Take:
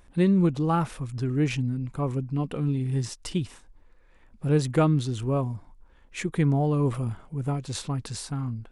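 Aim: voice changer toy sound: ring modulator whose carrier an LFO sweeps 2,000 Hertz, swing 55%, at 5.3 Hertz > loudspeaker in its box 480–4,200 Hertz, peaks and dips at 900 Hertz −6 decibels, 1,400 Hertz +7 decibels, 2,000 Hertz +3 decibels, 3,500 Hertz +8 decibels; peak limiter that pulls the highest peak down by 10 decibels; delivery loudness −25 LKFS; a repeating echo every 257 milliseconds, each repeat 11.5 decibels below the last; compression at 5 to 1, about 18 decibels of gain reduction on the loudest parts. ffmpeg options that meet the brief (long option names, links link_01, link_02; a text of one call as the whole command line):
ffmpeg -i in.wav -af "acompressor=threshold=-38dB:ratio=5,alimiter=level_in=9.5dB:limit=-24dB:level=0:latency=1,volume=-9.5dB,aecho=1:1:257|514|771:0.266|0.0718|0.0194,aeval=exprs='val(0)*sin(2*PI*2000*n/s+2000*0.55/5.3*sin(2*PI*5.3*n/s))':channel_layout=same,highpass=480,equalizer=frequency=900:width_type=q:width=4:gain=-6,equalizer=frequency=1400:width_type=q:width=4:gain=7,equalizer=frequency=2000:width_type=q:width=4:gain=3,equalizer=frequency=3500:width_type=q:width=4:gain=8,lowpass=frequency=4200:width=0.5412,lowpass=frequency=4200:width=1.3066,volume=14.5dB" out.wav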